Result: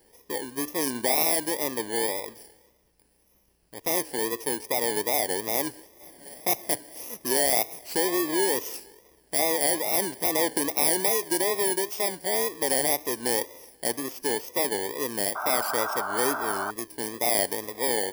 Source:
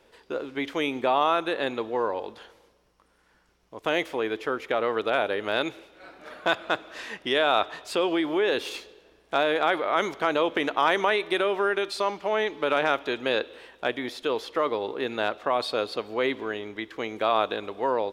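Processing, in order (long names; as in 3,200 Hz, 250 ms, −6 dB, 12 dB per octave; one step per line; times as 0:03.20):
samples in bit-reversed order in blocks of 32 samples
tape wow and flutter 120 cents
sound drawn into the spectrogram noise, 0:15.35–0:16.71, 590–1,600 Hz −31 dBFS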